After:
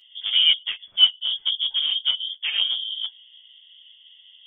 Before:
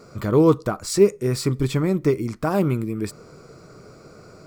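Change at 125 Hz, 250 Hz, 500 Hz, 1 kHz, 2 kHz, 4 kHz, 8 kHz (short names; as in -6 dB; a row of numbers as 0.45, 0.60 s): under -40 dB, under -40 dB, under -40 dB, under -15 dB, +3.0 dB, +21.5 dB, under -40 dB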